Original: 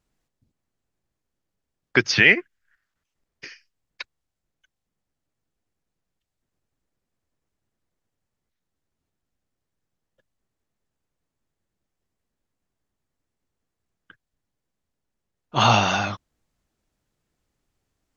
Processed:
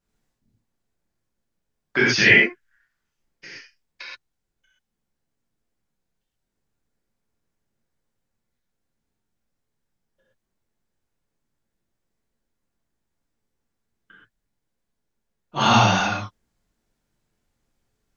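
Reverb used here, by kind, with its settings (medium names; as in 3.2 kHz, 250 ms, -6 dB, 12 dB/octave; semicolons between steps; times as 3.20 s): gated-style reverb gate 150 ms flat, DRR -8 dB; trim -7 dB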